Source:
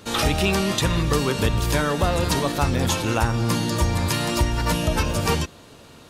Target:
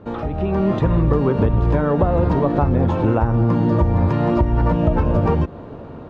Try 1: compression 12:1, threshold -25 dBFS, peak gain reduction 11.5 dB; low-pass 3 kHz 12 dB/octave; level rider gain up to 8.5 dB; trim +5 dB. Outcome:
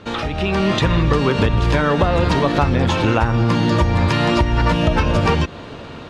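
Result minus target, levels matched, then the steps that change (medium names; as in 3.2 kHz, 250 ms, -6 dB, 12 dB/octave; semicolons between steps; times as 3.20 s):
4 kHz band +18.5 dB
change: low-pass 870 Hz 12 dB/octave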